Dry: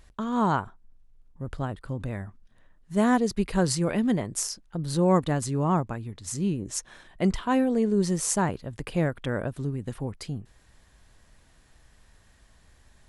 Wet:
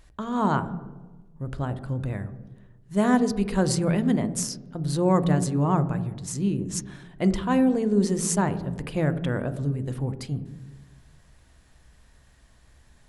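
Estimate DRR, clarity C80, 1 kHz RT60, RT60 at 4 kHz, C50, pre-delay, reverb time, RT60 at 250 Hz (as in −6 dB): 11.0 dB, 15.5 dB, 1.1 s, 0.85 s, 14.0 dB, 3 ms, 1.3 s, 1.5 s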